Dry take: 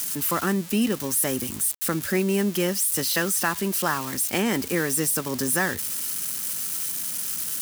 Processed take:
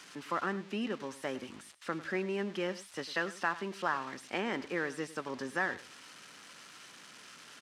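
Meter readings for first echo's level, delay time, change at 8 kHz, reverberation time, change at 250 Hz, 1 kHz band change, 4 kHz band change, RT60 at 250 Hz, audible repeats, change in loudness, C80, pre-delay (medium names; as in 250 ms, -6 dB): -16.5 dB, 101 ms, -27.5 dB, no reverb, -13.0 dB, -6.5 dB, -13.0 dB, no reverb, 1, -12.5 dB, no reverb, no reverb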